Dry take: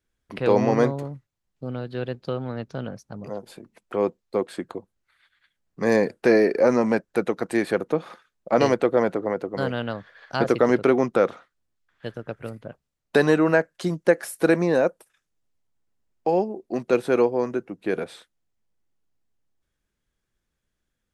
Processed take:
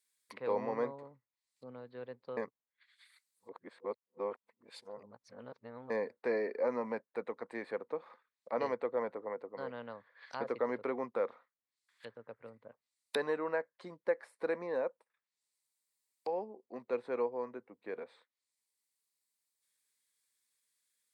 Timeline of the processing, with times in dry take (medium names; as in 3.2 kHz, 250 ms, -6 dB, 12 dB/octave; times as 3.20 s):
2.37–5.90 s: reverse
whole clip: rippled EQ curve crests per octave 0.96, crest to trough 7 dB; low-pass that closes with the level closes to 980 Hz, closed at -33 dBFS; differentiator; trim +7 dB